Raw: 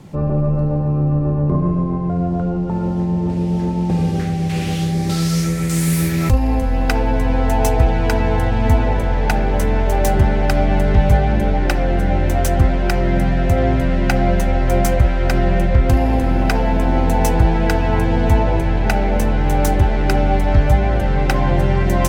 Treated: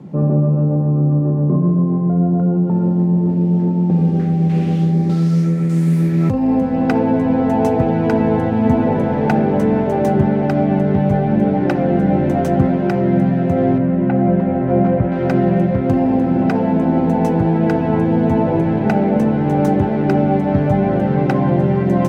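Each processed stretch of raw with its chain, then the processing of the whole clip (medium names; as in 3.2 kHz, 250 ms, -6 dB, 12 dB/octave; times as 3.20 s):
13.78–15.12 s: CVSD coder 64 kbps + distance through air 440 m
whole clip: high-pass 170 Hz 24 dB/octave; tilt EQ -4.5 dB/octave; gain riding 0.5 s; trim -2.5 dB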